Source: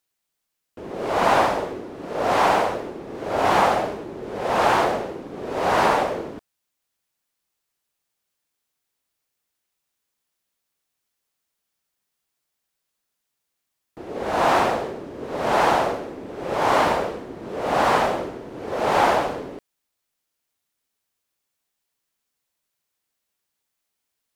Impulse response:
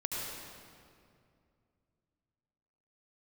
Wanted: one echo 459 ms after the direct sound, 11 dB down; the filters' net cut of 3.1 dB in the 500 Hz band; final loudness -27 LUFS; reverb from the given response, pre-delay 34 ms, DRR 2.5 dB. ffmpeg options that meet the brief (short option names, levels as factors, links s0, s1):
-filter_complex "[0:a]equalizer=f=500:t=o:g=-4,aecho=1:1:459:0.282,asplit=2[s0][s1];[1:a]atrim=start_sample=2205,adelay=34[s2];[s1][s2]afir=irnorm=-1:irlink=0,volume=0.473[s3];[s0][s3]amix=inputs=2:normalize=0,volume=0.531"